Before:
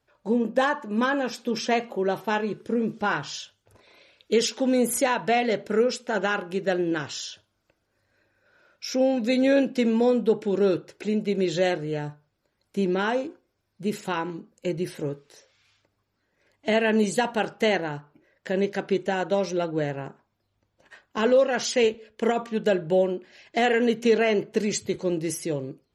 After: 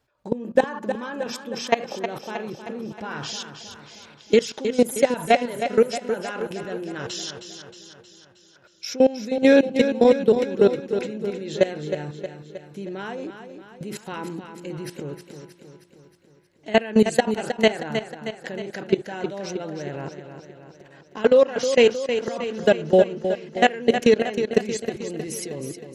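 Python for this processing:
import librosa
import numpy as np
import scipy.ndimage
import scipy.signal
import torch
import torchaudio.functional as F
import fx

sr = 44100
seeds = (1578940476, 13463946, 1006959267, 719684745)

p1 = fx.level_steps(x, sr, step_db=20)
p2 = p1 + fx.echo_feedback(p1, sr, ms=314, feedback_pct=56, wet_db=-9.0, dry=0)
y = F.gain(torch.from_numpy(p2), 7.5).numpy()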